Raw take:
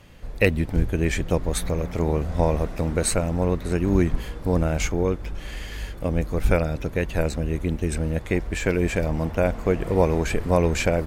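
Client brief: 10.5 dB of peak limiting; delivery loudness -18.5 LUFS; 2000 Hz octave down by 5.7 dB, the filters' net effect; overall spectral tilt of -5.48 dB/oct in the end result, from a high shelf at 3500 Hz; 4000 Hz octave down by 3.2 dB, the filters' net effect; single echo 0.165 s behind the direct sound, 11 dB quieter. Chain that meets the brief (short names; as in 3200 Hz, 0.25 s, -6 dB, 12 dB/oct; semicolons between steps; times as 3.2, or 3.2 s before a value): bell 2000 Hz -7.5 dB; high shelf 3500 Hz +5.5 dB; bell 4000 Hz -5.5 dB; limiter -16.5 dBFS; echo 0.165 s -11 dB; gain +9 dB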